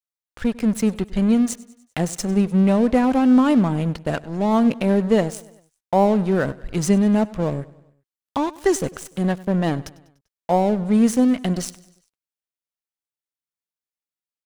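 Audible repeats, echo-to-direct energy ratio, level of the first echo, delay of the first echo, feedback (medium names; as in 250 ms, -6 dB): 3, -19.0 dB, -20.5 dB, 98 ms, 54%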